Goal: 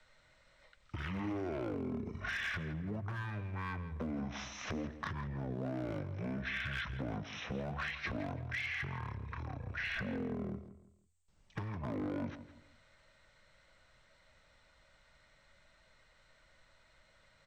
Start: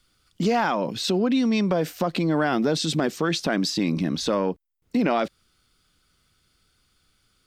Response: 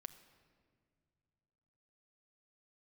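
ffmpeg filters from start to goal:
-filter_complex "[0:a]acrossover=split=770|4700[link_01][link_02][link_03];[link_02]asoftclip=type=tanh:threshold=-24dB[link_04];[link_01][link_04][link_03]amix=inputs=3:normalize=0,acompressor=threshold=-28dB:ratio=8,bandreject=frequency=50:width_type=h:width=6,bandreject=frequency=100:width_type=h:width=6,bandreject=frequency=150:width_type=h:width=6,bandreject=frequency=200:width_type=h:width=6,asetrate=18846,aresample=44100,volume=26.5dB,asoftclip=hard,volume=-26.5dB,acrossover=split=250|3000[link_05][link_06][link_07];[link_05]acompressor=threshold=-44dB:ratio=4[link_08];[link_06]acompressor=threshold=-38dB:ratio=4[link_09];[link_07]acompressor=threshold=-49dB:ratio=4[link_10];[link_08][link_09][link_10]amix=inputs=3:normalize=0,asplit=2[link_11][link_12];[link_12]adelay=165,lowpass=frequency=4400:poles=1,volume=-13dB,asplit=2[link_13][link_14];[link_14]adelay=165,lowpass=frequency=4400:poles=1,volume=0.32,asplit=2[link_15][link_16];[link_16]adelay=165,lowpass=frequency=4400:poles=1,volume=0.32[link_17];[link_13][link_15][link_17]amix=inputs=3:normalize=0[link_18];[link_11][link_18]amix=inputs=2:normalize=0"

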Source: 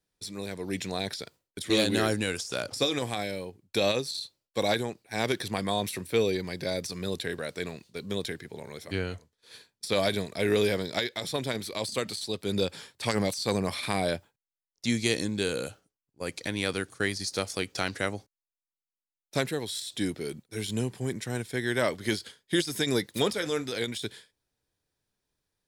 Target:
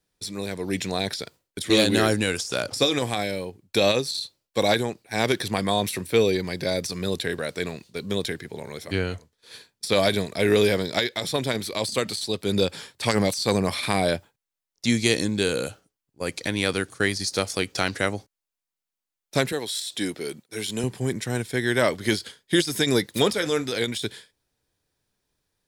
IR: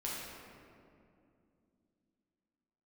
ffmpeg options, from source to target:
-filter_complex "[0:a]asettb=1/sr,asplit=3[link_01][link_02][link_03];[link_01]atrim=end=19.524[link_04];[link_02]atrim=start=19.52:end=20.84,asetpts=PTS-STARTPTS,afade=type=in:duration=0.004:curve=qsin,afade=type=out:start_time=1.316:duration=0.004:curve=qsin,highpass=frequency=340:poles=1[link_05];[link_03]atrim=start=20.836[link_06];[link_04][link_05]acrossfade=duration=0.004:curve1=hsin:curve2=qsin[link_07];[link_07][link_06]acrossfade=duration=0.004:curve1=qsin:curve2=hsin,volume=5.5dB"

